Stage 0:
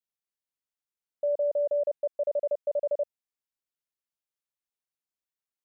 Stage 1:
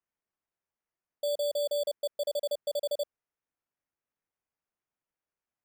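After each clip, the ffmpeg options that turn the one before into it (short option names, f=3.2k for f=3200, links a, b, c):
-af "acrusher=samples=11:mix=1:aa=0.000001,volume=-3.5dB"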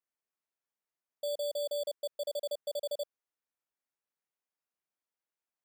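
-af "highpass=f=280:p=1,volume=-3.5dB"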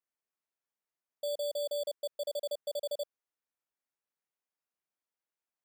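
-af anull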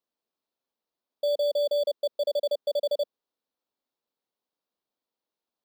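-af "equalizer=f=250:t=o:w=1:g=10,equalizer=f=500:t=o:w=1:g=8,equalizer=f=1k:t=o:w=1:g=5,equalizer=f=2k:t=o:w=1:g=-5,equalizer=f=4k:t=o:w=1:g=10,equalizer=f=8k:t=o:w=1:g=-8"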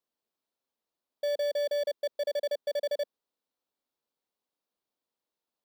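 -af "asoftclip=type=tanh:threshold=-24dB,volume=-1dB"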